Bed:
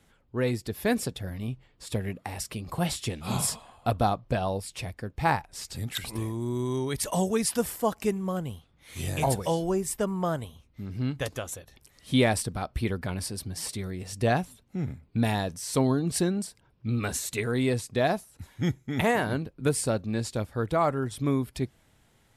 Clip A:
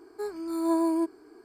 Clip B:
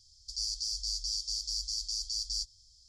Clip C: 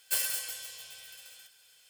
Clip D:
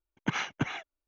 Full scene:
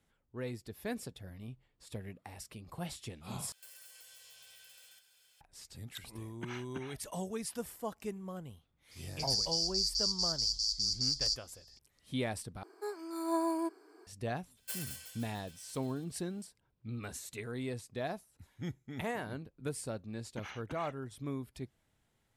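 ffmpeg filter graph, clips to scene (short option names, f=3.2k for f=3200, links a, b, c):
-filter_complex "[3:a]asplit=2[a][b];[4:a]asplit=2[c][d];[0:a]volume=-13dB[e];[a]acompressor=threshold=-46dB:ratio=6:attack=3.2:release=140:knee=1:detection=peak[f];[2:a]equalizer=f=4.7k:t=o:w=0.5:g=7[g];[1:a]highpass=450[h];[d]acompressor=threshold=-34dB:ratio=2.5:attack=1.8:release=123:knee=1:detection=rms[i];[e]asplit=3[j][k][l];[j]atrim=end=3.524[m];[f]atrim=end=1.89,asetpts=PTS-STARTPTS,volume=-6.5dB[n];[k]atrim=start=5.406:end=12.634[o];[h]atrim=end=1.44,asetpts=PTS-STARTPTS,volume=-2.5dB[p];[l]atrim=start=14.066[q];[c]atrim=end=1.07,asetpts=PTS-STARTPTS,volume=-14dB,afade=t=in:d=0.004:c=hsin,afade=t=out:st=1.066:d=0.004:c=hsin,adelay=6150[r];[g]atrim=end=2.88,asetpts=PTS-STARTPTS,volume=-3.5dB,afade=t=in:d=0.004:c=hsin,afade=t=out:st=2.876:d=0.004:c=hsin,adelay=8910[s];[b]atrim=end=1.89,asetpts=PTS-STARTPTS,volume=-11.5dB,afade=t=in:d=0.004:c=hsin,afade=t=out:st=1.886:d=0.004:c=hsin,adelay=14570[t];[i]atrim=end=1.07,asetpts=PTS-STARTPTS,volume=-9dB,afade=t=in:d=0.004:c=hsin,afade=t=out:st=1.066:d=0.004:c=hsin,adelay=20100[u];[m][n]acrossfade=d=0.004:c1=hsin:c2=hsin[v];[v][o]acrossfade=d=0.004:c1=hsin:c2=hsin[w];[w][p]acrossfade=d=0.004:c1=hsin:c2=hsin[x];[x][q]acrossfade=d=0.004:c1=hsin:c2=hsin[y];[y][r][s][t][u]amix=inputs=5:normalize=0"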